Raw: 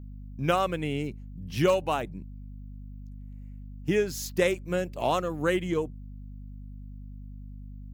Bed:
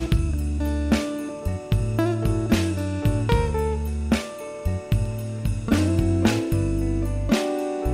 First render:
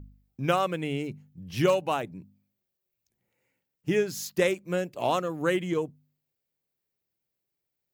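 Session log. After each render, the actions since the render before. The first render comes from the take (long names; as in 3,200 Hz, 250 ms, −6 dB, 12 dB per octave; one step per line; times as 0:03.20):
hum removal 50 Hz, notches 5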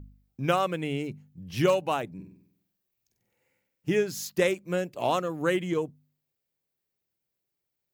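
0:02.14–0:03.91: flutter between parallel walls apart 8.1 metres, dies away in 0.68 s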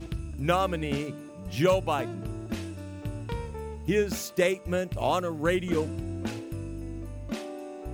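mix in bed −13.5 dB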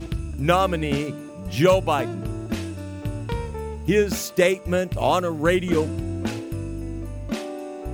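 level +6 dB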